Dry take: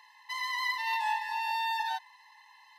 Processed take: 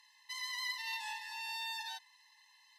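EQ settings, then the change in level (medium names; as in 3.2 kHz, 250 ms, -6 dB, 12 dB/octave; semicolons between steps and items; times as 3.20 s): band-pass filter 7.4 kHz, Q 0.8; +2.0 dB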